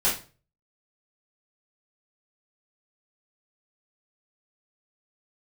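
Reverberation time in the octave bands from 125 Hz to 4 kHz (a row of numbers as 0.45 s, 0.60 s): 0.55 s, 0.40 s, 0.40 s, 0.35 s, 0.30 s, 0.30 s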